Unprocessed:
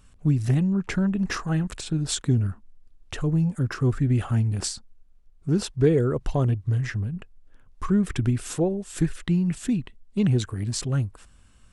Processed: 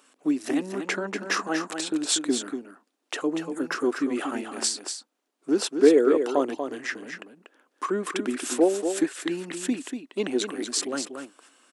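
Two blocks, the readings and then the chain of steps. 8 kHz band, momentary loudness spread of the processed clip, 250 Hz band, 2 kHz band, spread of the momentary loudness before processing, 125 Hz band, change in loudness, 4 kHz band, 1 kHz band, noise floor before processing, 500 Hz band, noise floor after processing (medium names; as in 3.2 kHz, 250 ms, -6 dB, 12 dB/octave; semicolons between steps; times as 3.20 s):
+4.5 dB, 14 LU, -1.5 dB, +5.0 dB, 9 LU, -25.5 dB, -1.5 dB, +5.0 dB, +5.5 dB, -55 dBFS, +5.0 dB, -77 dBFS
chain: elliptic high-pass 280 Hz, stop band 70 dB; on a send: delay 239 ms -7.5 dB; on the sum: trim +5 dB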